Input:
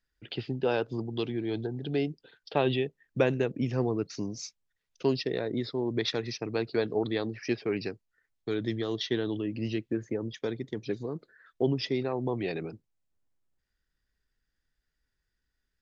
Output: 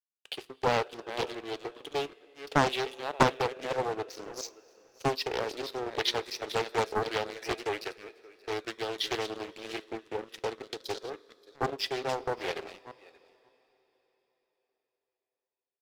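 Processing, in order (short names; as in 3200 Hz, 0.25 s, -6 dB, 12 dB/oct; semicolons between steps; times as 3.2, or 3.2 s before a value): reverse delay 0.315 s, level -10 dB; HPF 430 Hz 24 dB/oct; crossover distortion -44.5 dBFS; 10.63–11.1 resonant high shelf 3100 Hz +8.5 dB, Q 3; echo 0.577 s -23 dB; two-slope reverb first 0.21 s, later 4.3 s, from -20 dB, DRR 13.5 dB; Doppler distortion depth 0.82 ms; gain +4.5 dB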